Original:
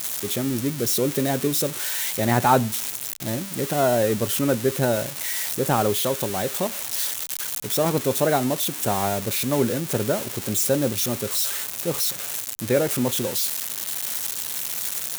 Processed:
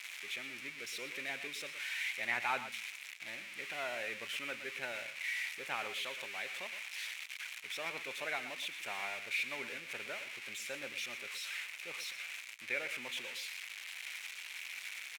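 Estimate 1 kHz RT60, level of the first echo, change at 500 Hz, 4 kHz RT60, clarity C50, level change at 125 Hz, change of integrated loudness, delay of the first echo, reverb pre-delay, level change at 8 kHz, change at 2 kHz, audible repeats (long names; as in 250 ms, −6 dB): no reverb audible, −12.0 dB, −24.5 dB, no reverb audible, no reverb audible, −36.5 dB, −16.5 dB, 118 ms, no reverb audible, −22.5 dB, −3.5 dB, 1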